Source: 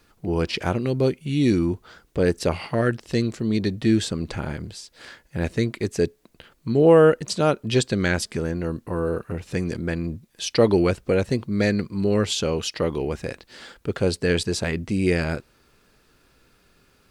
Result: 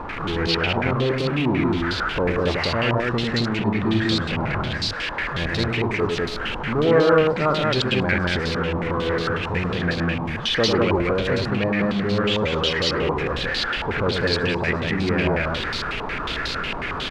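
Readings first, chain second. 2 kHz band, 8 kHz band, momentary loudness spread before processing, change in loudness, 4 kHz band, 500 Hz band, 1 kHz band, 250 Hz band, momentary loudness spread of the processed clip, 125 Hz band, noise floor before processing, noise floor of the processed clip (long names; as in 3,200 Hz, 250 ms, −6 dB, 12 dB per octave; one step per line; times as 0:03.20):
+8.0 dB, −6.0 dB, 13 LU, +1.0 dB, +7.5 dB, 0.0 dB, +7.0 dB, 0.0 dB, 6 LU, +1.0 dB, −61 dBFS, −29 dBFS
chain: converter with a step at zero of −19.5 dBFS
loudspeakers that aren't time-aligned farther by 34 metres −4 dB, 69 metres −1 dB
low-pass on a step sequencer 11 Hz 950–4,200 Hz
level −7 dB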